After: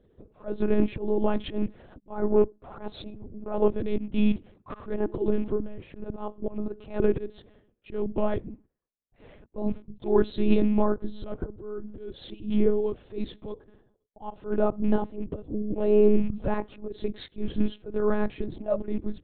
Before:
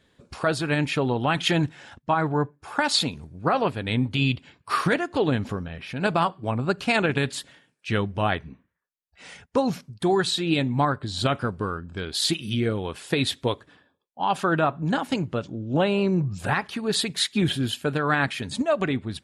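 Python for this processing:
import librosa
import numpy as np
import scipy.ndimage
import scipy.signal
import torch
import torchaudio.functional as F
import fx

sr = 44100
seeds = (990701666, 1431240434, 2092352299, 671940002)

y = fx.rattle_buzz(x, sr, strikes_db=-25.0, level_db=-25.0)
y = fx.curve_eq(y, sr, hz=(120.0, 380.0, 1700.0, 2500.0), db=(0, 8, -14, -15))
y = fx.auto_swell(y, sr, attack_ms=224.0)
y = fx.lpc_monotone(y, sr, seeds[0], pitch_hz=210.0, order=10)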